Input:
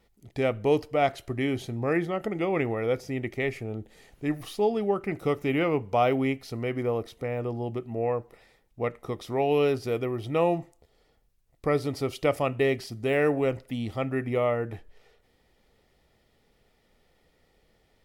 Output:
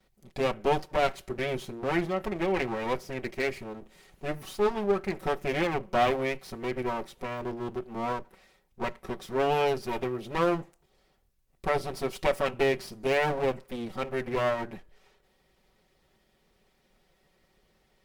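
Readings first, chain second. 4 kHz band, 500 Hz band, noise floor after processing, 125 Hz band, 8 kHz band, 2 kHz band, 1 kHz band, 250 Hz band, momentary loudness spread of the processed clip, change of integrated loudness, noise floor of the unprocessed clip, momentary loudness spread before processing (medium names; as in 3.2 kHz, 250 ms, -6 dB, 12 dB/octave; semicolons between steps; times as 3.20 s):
+1.5 dB, -2.5 dB, -69 dBFS, -6.0 dB, no reading, +0.5 dB, +1.0 dB, -4.5 dB, 11 LU, -2.0 dB, -67 dBFS, 9 LU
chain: comb filter that takes the minimum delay 5.3 ms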